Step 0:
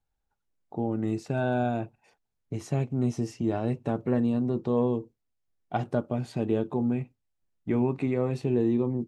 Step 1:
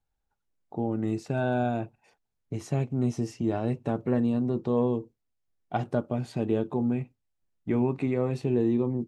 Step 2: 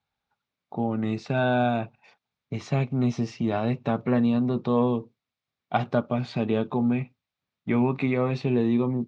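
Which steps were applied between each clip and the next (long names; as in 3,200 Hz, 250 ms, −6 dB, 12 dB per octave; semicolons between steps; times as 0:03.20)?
no processing that can be heard
loudspeaker in its box 120–5,500 Hz, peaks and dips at 330 Hz −8 dB, 470 Hz −3 dB, 1,200 Hz +5 dB, 2,300 Hz +6 dB, 3,700 Hz +6 dB; level +5 dB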